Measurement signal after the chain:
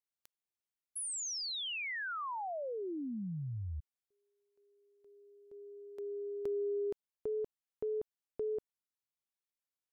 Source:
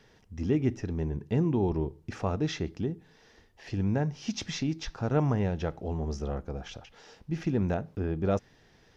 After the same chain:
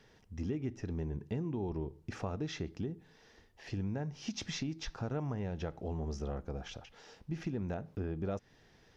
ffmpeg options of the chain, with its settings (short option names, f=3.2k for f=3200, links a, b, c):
-af "acompressor=threshold=-31dB:ratio=4,volume=-3dB"